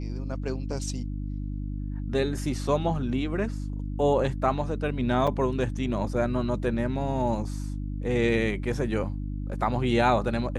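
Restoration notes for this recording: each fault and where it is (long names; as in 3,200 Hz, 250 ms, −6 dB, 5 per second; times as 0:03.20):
mains hum 50 Hz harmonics 6 −32 dBFS
0:05.27–0:05.28: drop-out 5.1 ms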